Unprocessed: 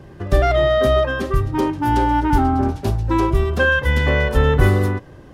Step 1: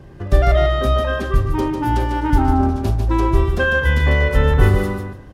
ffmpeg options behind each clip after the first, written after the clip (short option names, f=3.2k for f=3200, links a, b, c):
-filter_complex "[0:a]lowshelf=f=67:g=8,asplit=2[a][b];[b]aecho=0:1:148|296|444:0.501|0.1|0.02[c];[a][c]amix=inputs=2:normalize=0,volume=-2dB"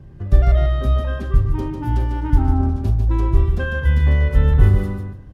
-af "bass=f=250:g=11,treble=f=4k:g=-1,volume=-9.5dB"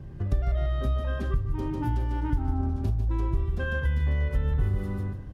-af "acompressor=threshold=-26dB:ratio=3"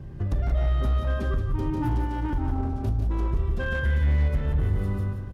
-af "volume=22dB,asoftclip=hard,volume=-22dB,aecho=1:1:177:0.398,volume=2dB"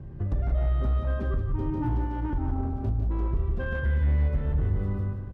-af "lowpass=f=1.4k:p=1,volume=-1.5dB"